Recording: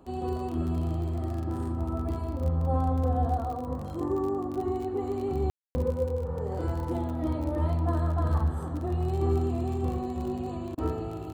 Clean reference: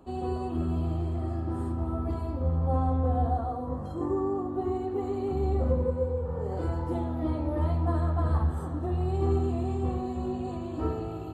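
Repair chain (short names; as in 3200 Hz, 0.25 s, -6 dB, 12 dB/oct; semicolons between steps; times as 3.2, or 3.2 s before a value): de-click; room tone fill 5.5–5.75; interpolate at 10.75, 25 ms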